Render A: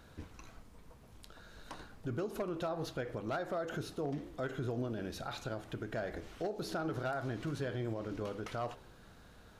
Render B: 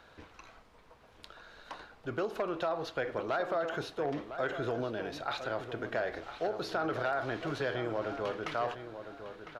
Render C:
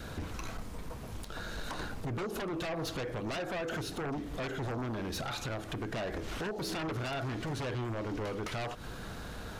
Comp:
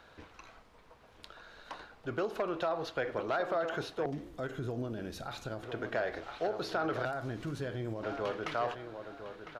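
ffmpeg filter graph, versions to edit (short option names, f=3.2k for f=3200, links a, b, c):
-filter_complex "[0:a]asplit=2[a][b];[1:a]asplit=3[c][d][e];[c]atrim=end=4.062[f];[a]atrim=start=4.058:end=5.632[g];[d]atrim=start=5.628:end=7.052[h];[b]atrim=start=7.048:end=8.032[i];[e]atrim=start=8.028[j];[f][g]acrossfade=d=0.004:c1=hsin:c2=hsin[k];[k][h]acrossfade=d=0.004:c1=hsin:c2=hsin[l];[l][i]acrossfade=d=0.004:c1=hsin:c2=hsin[m];[m][j]acrossfade=d=0.004:c1=hsin:c2=hsin"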